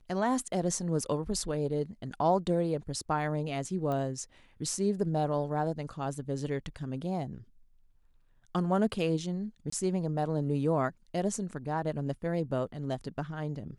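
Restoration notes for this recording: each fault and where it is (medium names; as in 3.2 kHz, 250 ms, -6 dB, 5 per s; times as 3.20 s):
3.92 s: pop -23 dBFS
9.70–9.72 s: dropout 24 ms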